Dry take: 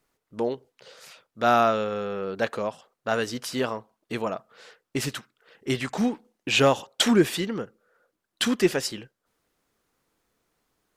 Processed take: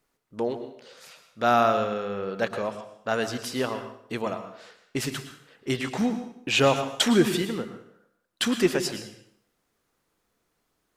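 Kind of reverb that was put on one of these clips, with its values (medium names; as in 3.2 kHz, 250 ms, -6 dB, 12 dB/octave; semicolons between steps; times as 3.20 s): plate-style reverb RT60 0.66 s, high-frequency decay 0.9×, pre-delay 95 ms, DRR 9 dB; trim -1 dB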